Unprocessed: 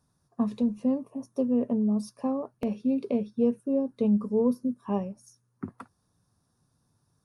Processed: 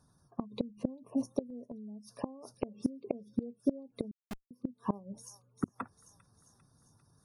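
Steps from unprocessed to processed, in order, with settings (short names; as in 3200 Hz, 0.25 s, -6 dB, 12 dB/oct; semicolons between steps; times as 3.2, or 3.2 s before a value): spectral gate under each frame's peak -30 dB strong; on a send: thin delay 0.398 s, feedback 57%, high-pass 4700 Hz, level -5 dB; on the sum: flipped gate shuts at -22 dBFS, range -25 dB; 4.11–4.51 Schmitt trigger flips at -36.5 dBFS; gain +4.5 dB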